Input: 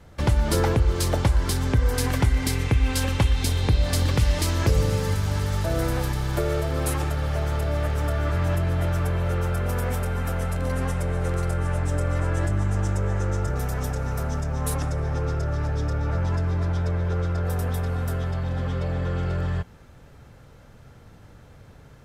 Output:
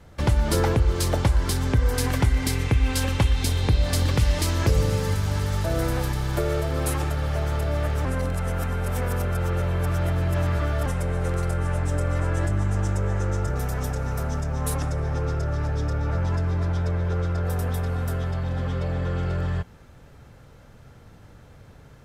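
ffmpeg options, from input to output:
ffmpeg -i in.wav -filter_complex "[0:a]asplit=3[link_01][link_02][link_03];[link_01]atrim=end=8.052[link_04];[link_02]atrim=start=8.048:end=10.862,asetpts=PTS-STARTPTS,areverse[link_05];[link_03]atrim=start=10.858[link_06];[link_04][link_05]acrossfade=duration=0.004:curve1=hsin:curve2=hsin[link_07];[link_07][link_06]acrossfade=duration=0.004:curve1=hsin:curve2=hsin" out.wav

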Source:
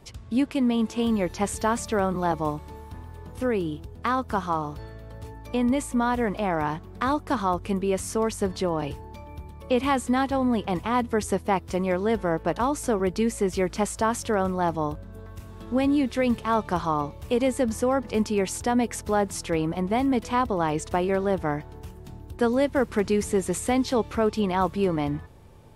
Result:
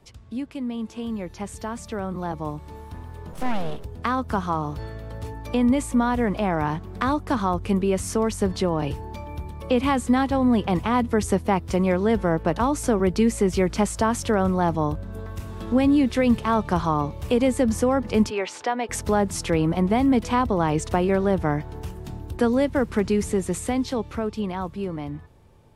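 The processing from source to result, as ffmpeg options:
ffmpeg -i in.wav -filter_complex "[0:a]asettb=1/sr,asplit=3[link_01][link_02][link_03];[link_01]atrim=end=3.334[link_04];[link_02]atrim=start=3.33:end=3.85,asetpts=PTS-STARTPTS,afade=type=in:duration=0.004:curve=qsin,afade=type=out:start_time=0.516:duration=0.004:curve=qsin,aeval=exprs='abs(val(0))':channel_layout=same[link_05];[link_03]atrim=start=3.846[link_06];[link_04][link_05]acrossfade=duration=0.004:curve1=hsin:curve2=qsin[link_07];[link_07][link_06]acrossfade=duration=0.004:curve1=qsin:curve2=hsin,asplit=3[link_08][link_09][link_10];[link_08]afade=type=out:start_time=18.29:duration=0.02[link_11];[link_09]highpass=560,lowpass=3700,afade=type=in:start_time=18.29:duration=0.02,afade=type=out:start_time=18.88:duration=0.02[link_12];[link_10]afade=type=in:start_time=18.88:duration=0.02[link_13];[link_11][link_12][link_13]amix=inputs=3:normalize=0,acrossover=split=230[link_14][link_15];[link_15]acompressor=threshold=-36dB:ratio=1.5[link_16];[link_14][link_16]amix=inputs=2:normalize=0,highshelf=frequency=11000:gain=-3.5,dynaudnorm=framelen=450:gausssize=13:maxgain=12.5dB,volume=-4.5dB" out.wav

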